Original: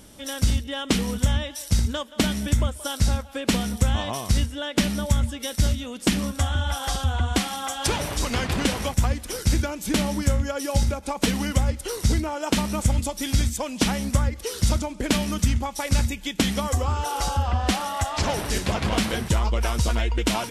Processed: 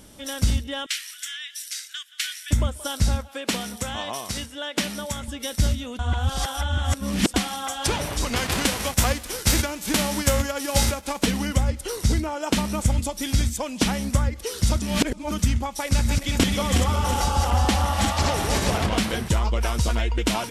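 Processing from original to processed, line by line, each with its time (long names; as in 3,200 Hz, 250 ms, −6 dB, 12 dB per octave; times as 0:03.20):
0:00.86–0:02.51: Butterworth high-pass 1,500 Hz 48 dB per octave
0:03.28–0:05.28: high-pass filter 440 Hz 6 dB per octave
0:05.99–0:07.34: reverse
0:08.35–0:11.21: spectral envelope flattened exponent 0.6
0:14.82–0:15.31: reverse
0:15.87–0:18.86: feedback delay that plays each chunk backwards 182 ms, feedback 64%, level −2.5 dB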